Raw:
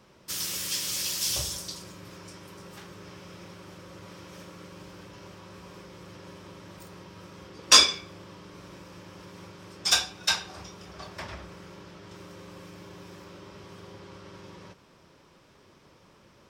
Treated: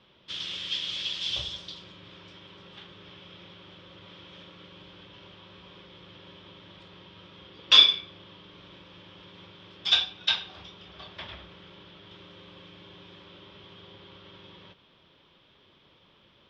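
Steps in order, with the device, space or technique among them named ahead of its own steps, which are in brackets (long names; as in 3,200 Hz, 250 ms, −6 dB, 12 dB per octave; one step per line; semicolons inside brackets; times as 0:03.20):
overdriven synthesiser ladder filter (soft clipping −10.5 dBFS, distortion −13 dB; transistor ladder low-pass 3,600 Hz, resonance 75%)
level +6.5 dB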